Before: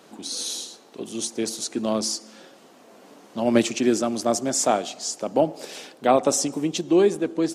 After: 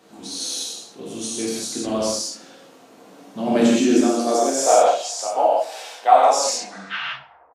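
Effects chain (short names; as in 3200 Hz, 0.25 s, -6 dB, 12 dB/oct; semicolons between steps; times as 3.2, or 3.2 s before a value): tape stop at the end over 1.28 s; high-pass sweep 68 Hz -> 760 Hz, 2.58–5.05; on a send: feedback echo 66 ms, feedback 31%, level -17 dB; on the sum: non-linear reverb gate 0.21 s flat, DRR -7 dB; gain -5.5 dB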